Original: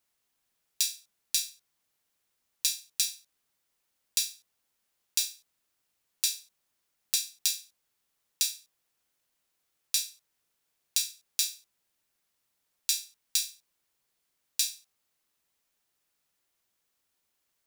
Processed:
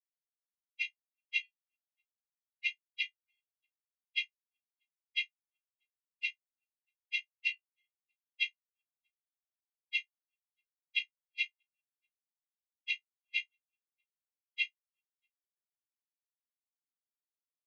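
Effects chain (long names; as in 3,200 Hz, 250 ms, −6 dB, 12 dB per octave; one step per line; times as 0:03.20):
partials spread apart or drawn together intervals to 77%
multi-tap delay 48/54/337/383/638 ms −17/−16.5/−20/−18/−13 dB
every bin expanded away from the loudest bin 4 to 1
level −5.5 dB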